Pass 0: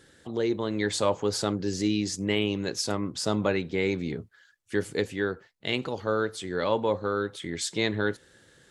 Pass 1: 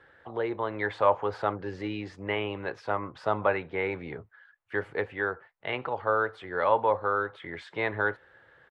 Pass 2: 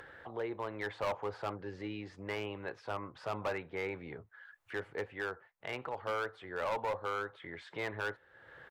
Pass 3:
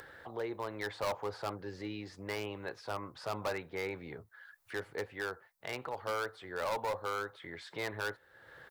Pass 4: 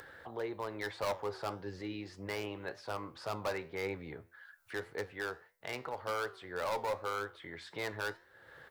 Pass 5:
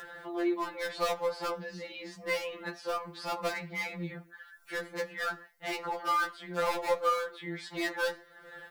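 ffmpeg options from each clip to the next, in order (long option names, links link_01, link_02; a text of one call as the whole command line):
ffmpeg -i in.wav -filter_complex "[0:a]firequalizer=gain_entry='entry(120,0);entry(200,-8);entry(400,-7);entry(830,-1);entry(6600,-26)':delay=0.05:min_phase=1,acrossover=split=3800[link_01][link_02];[link_02]alimiter=level_in=22.5dB:limit=-24dB:level=0:latency=1:release=214,volume=-22.5dB[link_03];[link_01][link_03]amix=inputs=2:normalize=0,acrossover=split=450 2800:gain=0.2 1 0.251[link_04][link_05][link_06];[link_04][link_05][link_06]amix=inputs=3:normalize=0,volume=8.5dB" out.wav
ffmpeg -i in.wav -af "asoftclip=type=hard:threshold=-22.5dB,acompressor=mode=upward:threshold=-34dB:ratio=2.5,volume=-7.5dB" out.wav
ffmpeg -i in.wav -af "aexciter=amount=2.4:drive=6:freq=4000" out.wav
ffmpeg -i in.wav -af "flanger=delay=9.9:depth=3.5:regen=83:speed=1.8:shape=triangular,volume=4dB" out.wav
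ffmpeg -i in.wav -af "afftfilt=real='re*2.83*eq(mod(b,8),0)':imag='im*2.83*eq(mod(b,8),0)':win_size=2048:overlap=0.75,volume=8.5dB" out.wav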